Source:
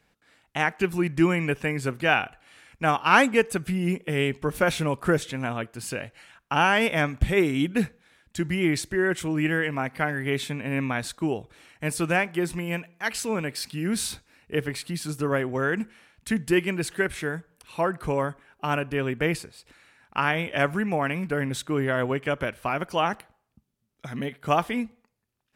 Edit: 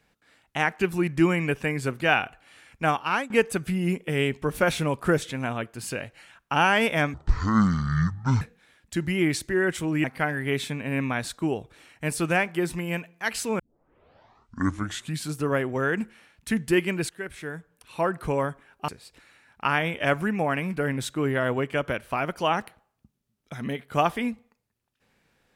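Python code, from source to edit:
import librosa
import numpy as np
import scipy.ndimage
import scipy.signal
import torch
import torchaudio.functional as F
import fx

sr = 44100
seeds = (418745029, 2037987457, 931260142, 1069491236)

y = fx.edit(x, sr, fx.fade_out_to(start_s=2.85, length_s=0.45, floor_db=-21.5),
    fx.speed_span(start_s=7.14, length_s=0.7, speed=0.55),
    fx.cut(start_s=9.47, length_s=0.37),
    fx.tape_start(start_s=13.39, length_s=1.7),
    fx.fade_in_from(start_s=16.89, length_s=0.98, floor_db=-13.5),
    fx.cut(start_s=18.68, length_s=0.73), tone=tone)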